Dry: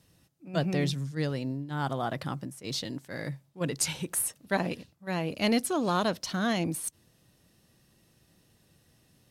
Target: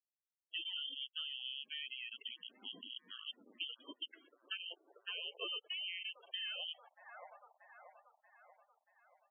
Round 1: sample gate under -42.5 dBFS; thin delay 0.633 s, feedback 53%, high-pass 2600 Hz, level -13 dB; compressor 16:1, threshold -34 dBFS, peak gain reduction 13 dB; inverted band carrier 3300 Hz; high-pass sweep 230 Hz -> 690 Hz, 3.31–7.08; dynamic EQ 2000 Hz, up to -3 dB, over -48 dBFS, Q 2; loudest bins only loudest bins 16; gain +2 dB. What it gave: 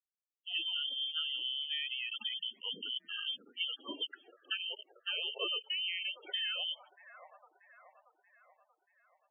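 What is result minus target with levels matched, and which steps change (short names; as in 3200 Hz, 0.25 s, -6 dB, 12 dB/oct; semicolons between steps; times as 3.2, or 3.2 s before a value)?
sample gate: distortion -14 dB; compressor: peak gain reduction -6 dB
change: sample gate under -31 dBFS; change: compressor 16:1, threshold -40.5 dBFS, peak gain reduction 19.5 dB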